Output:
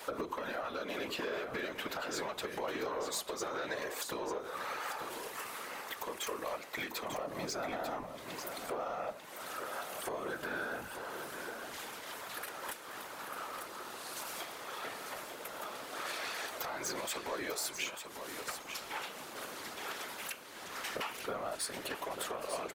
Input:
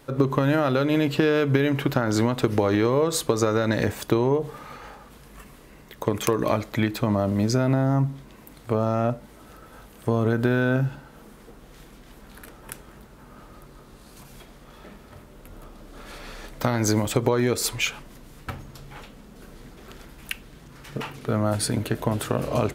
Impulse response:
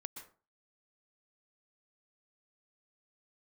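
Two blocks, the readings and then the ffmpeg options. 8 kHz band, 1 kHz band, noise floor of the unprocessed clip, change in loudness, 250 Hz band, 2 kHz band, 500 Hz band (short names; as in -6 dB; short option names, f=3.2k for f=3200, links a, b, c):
-7.5 dB, -8.0 dB, -49 dBFS, -16.0 dB, -22.0 dB, -7.5 dB, -15.0 dB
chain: -af "highpass=630,acompressor=threshold=-44dB:ratio=5,asoftclip=type=tanh:threshold=-38dB,afftfilt=real='hypot(re,im)*cos(2*PI*random(0))':imag='hypot(re,im)*sin(2*PI*random(1))':win_size=512:overlap=0.75,aecho=1:1:894:0.398,volume=14.5dB"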